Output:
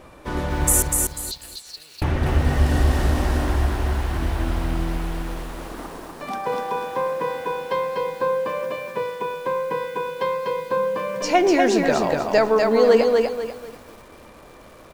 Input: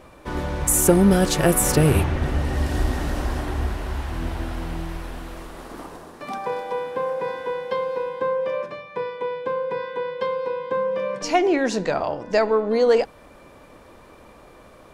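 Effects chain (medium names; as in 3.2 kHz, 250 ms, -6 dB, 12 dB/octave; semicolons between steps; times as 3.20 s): 0.82–2.02 s: band-pass filter 4.3 kHz, Q 11; speakerphone echo 120 ms, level -20 dB; bit-crushed delay 246 ms, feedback 35%, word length 8-bit, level -3 dB; trim +1.5 dB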